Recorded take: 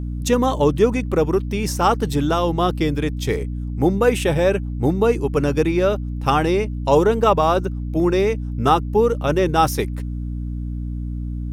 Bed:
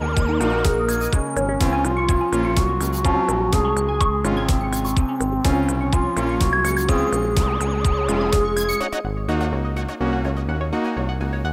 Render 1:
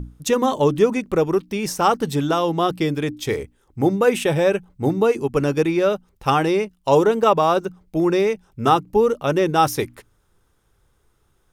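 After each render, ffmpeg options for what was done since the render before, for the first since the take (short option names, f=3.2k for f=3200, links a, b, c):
-af "bandreject=f=60:t=h:w=6,bandreject=f=120:t=h:w=6,bandreject=f=180:t=h:w=6,bandreject=f=240:t=h:w=6,bandreject=f=300:t=h:w=6"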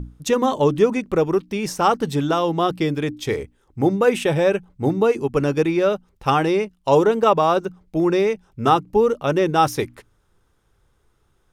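-af "highshelf=f=9.4k:g=-8"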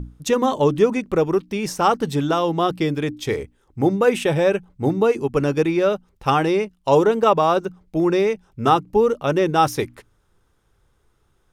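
-af anull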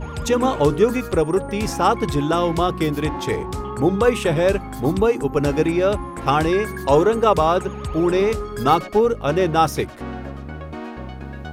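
-filter_complex "[1:a]volume=-9.5dB[a];[0:a][a]amix=inputs=2:normalize=0"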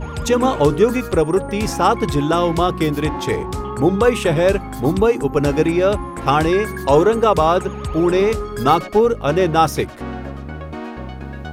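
-af "volume=2.5dB,alimiter=limit=-3dB:level=0:latency=1"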